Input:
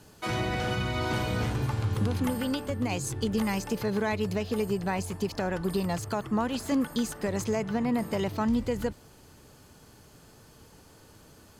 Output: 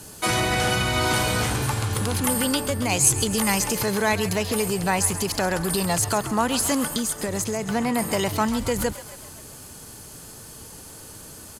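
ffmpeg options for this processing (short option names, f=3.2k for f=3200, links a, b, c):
-filter_complex "[0:a]equalizer=f=10k:t=o:w=1.2:g=13.5,asettb=1/sr,asplit=3[a][b][c];[a]atrim=end=6.884[d];[b]atrim=start=6.88:end=7.69,asetpts=PTS-STARTPTS,afade=t=in:d=0.004:c=qsin,afade=t=out:st=0.806:d=0.004:c=qsin,acompressor=threshold=-31dB:ratio=6[e];[c]atrim=start=7.686[f];[d][e]acrossfade=d=0.004:c1=hsin:c2=qsin[g];[g][f]acrossfade=d=0.004:c1=qsin:c2=hsin,acrossover=split=570[h][i];[h]alimiter=level_in=5dB:limit=-24dB:level=0:latency=1,volume=-5dB[j];[i]asplit=8[k][l][m][n][o][p][q][r];[l]adelay=134,afreqshift=35,volume=-13dB[s];[m]adelay=268,afreqshift=70,volume=-17.3dB[t];[n]adelay=402,afreqshift=105,volume=-21.6dB[u];[o]adelay=536,afreqshift=140,volume=-25.9dB[v];[p]adelay=670,afreqshift=175,volume=-30.2dB[w];[q]adelay=804,afreqshift=210,volume=-34.5dB[x];[r]adelay=938,afreqshift=245,volume=-38.8dB[y];[k][s][t][u][v][w][x][y]amix=inputs=8:normalize=0[z];[j][z]amix=inputs=2:normalize=0,volume=8.5dB"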